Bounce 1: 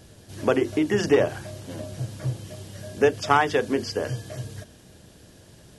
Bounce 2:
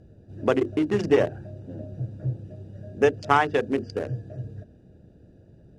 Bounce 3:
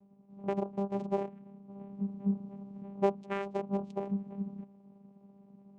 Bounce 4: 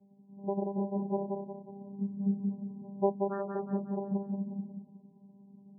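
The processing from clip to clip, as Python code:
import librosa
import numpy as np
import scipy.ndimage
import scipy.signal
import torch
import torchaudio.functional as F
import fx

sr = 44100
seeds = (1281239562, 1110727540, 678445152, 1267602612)

y1 = fx.wiener(x, sr, points=41)
y1 = scipy.signal.sosfilt(scipy.signal.butter(2, 9500.0, 'lowpass', fs=sr, output='sos'), y1)
y2 = fx.rider(y1, sr, range_db=4, speed_s=0.5)
y2 = fx.vocoder(y2, sr, bands=4, carrier='saw', carrier_hz=198.0)
y2 = y2 * librosa.db_to_amplitude(-8.5)
y3 = fx.spec_topn(y2, sr, count=16)
y3 = fx.echo_feedback(y3, sr, ms=181, feedback_pct=43, wet_db=-4)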